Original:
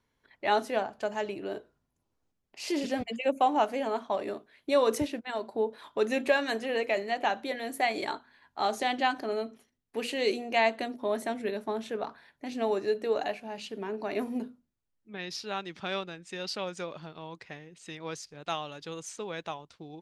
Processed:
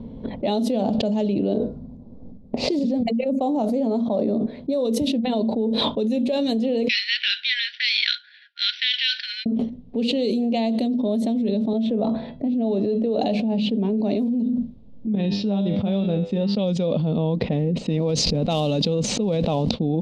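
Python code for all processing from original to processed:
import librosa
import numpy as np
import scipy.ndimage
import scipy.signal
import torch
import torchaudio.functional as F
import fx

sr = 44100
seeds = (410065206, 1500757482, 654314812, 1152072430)

y = fx.chain(x, sr, fx.peak_eq(hz=3000.0, db=-11.5, octaves=0.6),
    fx.tremolo_shape(shape='saw_up', hz=2.4, depth_pct=50), at=(1.54, 4.85))
y = fx.chain(y, sr, fx.median_filter(points=9),
    fx.brickwall_bandpass(low_hz=1400.0, high_hz=5900.0), at=(6.88, 9.46))
y = fx.chain(y, sr, fx.comb_fb(f0_hz=660.0, decay_s=0.21, harmonics='all', damping=0.0, mix_pct=70),
    fx.band_squash(depth_pct=40), at=(11.73, 13.18))
y = fx.chain(y, sr, fx.lowpass(hz=8500.0, slope=12),
    fx.comb_fb(f0_hz=100.0, decay_s=0.53, harmonics='all', damping=0.0, mix_pct=80), at=(15.15, 16.57))
y = fx.chain(y, sr, fx.block_float(bits=5),
    fx.peak_eq(hz=3400.0, db=-8.5, octaves=0.22),
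    fx.sustainer(db_per_s=21.0), at=(17.58, 19.71))
y = fx.env_lowpass(y, sr, base_hz=1300.0, full_db=-24.5)
y = fx.curve_eq(y, sr, hz=(130.0, 230.0, 350.0, 500.0, 1600.0, 3700.0, 6000.0), db=(0, 11, -7, 1, -28, -2, -11))
y = fx.env_flatten(y, sr, amount_pct=100)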